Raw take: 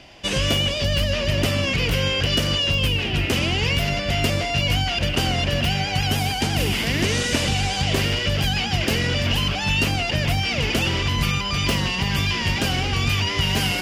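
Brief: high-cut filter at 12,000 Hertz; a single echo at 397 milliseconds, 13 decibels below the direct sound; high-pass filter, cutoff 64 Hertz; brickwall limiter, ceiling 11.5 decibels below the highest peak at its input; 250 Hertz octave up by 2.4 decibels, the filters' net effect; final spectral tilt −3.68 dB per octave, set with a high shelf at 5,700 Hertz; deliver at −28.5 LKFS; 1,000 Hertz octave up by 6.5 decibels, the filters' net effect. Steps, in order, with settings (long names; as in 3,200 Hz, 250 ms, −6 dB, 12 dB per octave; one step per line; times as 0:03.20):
high-pass filter 64 Hz
low-pass filter 12,000 Hz
parametric band 250 Hz +3 dB
parametric band 1,000 Hz +8.5 dB
high-shelf EQ 5,700 Hz +6 dB
brickwall limiter −15.5 dBFS
single-tap delay 397 ms −13 dB
level −5 dB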